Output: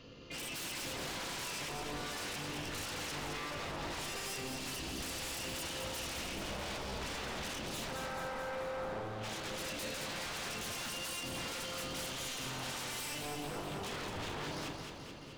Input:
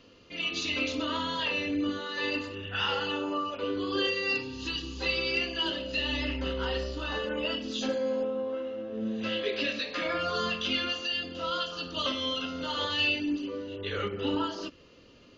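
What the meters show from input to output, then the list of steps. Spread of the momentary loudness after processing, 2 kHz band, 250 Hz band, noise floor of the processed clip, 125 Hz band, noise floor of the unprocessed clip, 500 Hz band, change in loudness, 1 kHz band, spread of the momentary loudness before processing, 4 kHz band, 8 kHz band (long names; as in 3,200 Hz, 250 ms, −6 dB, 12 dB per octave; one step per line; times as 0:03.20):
2 LU, −9.0 dB, −12.0 dB, −47 dBFS, −3.5 dB, −56 dBFS, −10.5 dB, −9.0 dB, −6.5 dB, 6 LU, −9.5 dB, can't be measured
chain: sub-octave generator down 1 octave, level 0 dB
mains-hum notches 60/120/180/240/300 Hz
downward compressor 4 to 1, threshold −34 dBFS, peak gain reduction 9 dB
wave folding −39 dBFS
on a send: delay that swaps between a low-pass and a high-pass 108 ms, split 1,000 Hz, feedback 78%, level −3 dB
on the sum: level +1 dB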